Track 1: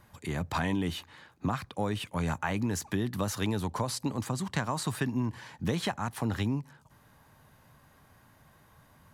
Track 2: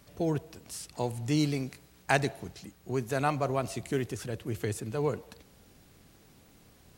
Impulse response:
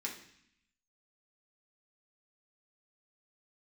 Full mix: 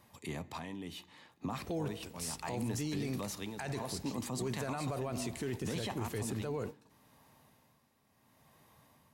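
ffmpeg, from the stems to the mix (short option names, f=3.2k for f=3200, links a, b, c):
-filter_complex "[0:a]highpass=f=130:p=1,equalizer=f=1.5k:w=3.5:g=-10.5,tremolo=f=0.69:d=0.73,volume=-2dB,asplit=3[a][b][c];[b]volume=-11.5dB[d];[1:a]alimiter=limit=-20dB:level=0:latency=1:release=113,adelay=1500,volume=0.5dB,asplit=2[e][f];[f]volume=-21.5dB[g];[c]apad=whole_len=373739[h];[e][h]sidechaingate=range=-33dB:threshold=-58dB:ratio=16:detection=peak[i];[2:a]atrim=start_sample=2205[j];[d][g]amix=inputs=2:normalize=0[k];[k][j]afir=irnorm=-1:irlink=0[l];[a][i][l]amix=inputs=3:normalize=0,alimiter=level_in=4.5dB:limit=-24dB:level=0:latency=1:release=16,volume=-4.5dB"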